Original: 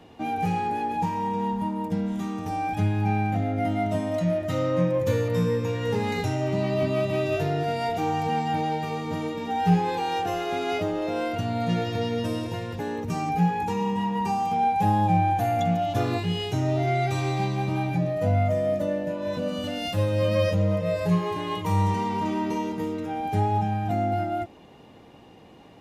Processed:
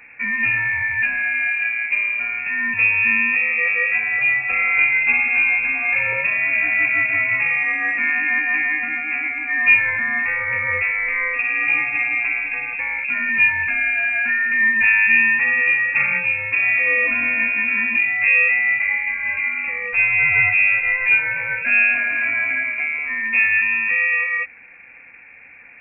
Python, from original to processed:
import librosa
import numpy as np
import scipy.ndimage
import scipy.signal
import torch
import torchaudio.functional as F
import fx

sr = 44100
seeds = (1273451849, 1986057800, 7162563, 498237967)

y = fx.freq_invert(x, sr, carrier_hz=2600)
y = y * 10.0 ** (6.0 / 20.0)